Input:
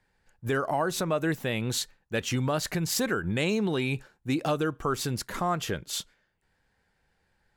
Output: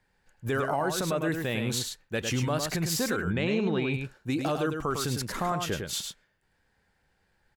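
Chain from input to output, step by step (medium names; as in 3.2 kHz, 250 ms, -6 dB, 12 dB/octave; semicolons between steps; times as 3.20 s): 3.29–3.94 s: low-pass 3.4 kHz 12 dB/octave; peak limiter -20 dBFS, peak gain reduction 4 dB; on a send: delay 104 ms -5.5 dB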